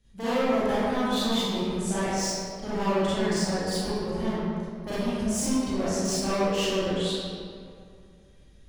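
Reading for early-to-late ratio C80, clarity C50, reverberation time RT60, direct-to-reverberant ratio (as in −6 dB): −3.0 dB, −7.0 dB, 2.3 s, −13.0 dB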